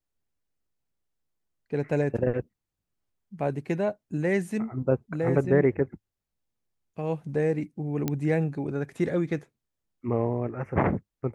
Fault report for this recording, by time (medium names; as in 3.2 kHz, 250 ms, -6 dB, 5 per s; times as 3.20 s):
8.08 s: pop -13 dBFS